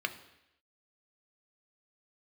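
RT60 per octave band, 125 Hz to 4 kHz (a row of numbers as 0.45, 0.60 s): 0.75, 0.80, 0.85, 0.85, 0.90, 0.90 s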